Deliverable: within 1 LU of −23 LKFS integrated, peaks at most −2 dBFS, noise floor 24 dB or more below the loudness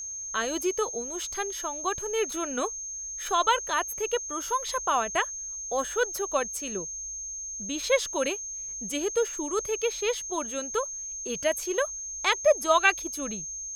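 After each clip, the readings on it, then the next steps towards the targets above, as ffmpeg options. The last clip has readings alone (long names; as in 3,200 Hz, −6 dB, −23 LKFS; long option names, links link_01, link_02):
interfering tone 6,400 Hz; level of the tone −34 dBFS; integrated loudness −28.0 LKFS; sample peak −7.0 dBFS; target loudness −23.0 LKFS
→ -af "bandreject=frequency=6400:width=30"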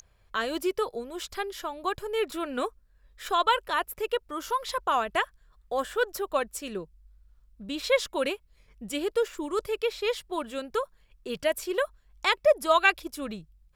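interfering tone none found; integrated loudness −29.0 LKFS; sample peak −7.0 dBFS; target loudness −23.0 LKFS
→ -af "volume=6dB,alimiter=limit=-2dB:level=0:latency=1"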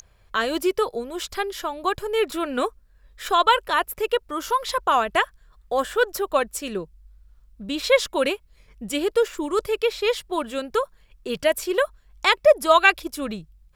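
integrated loudness −23.0 LKFS; sample peak −2.0 dBFS; background noise floor −57 dBFS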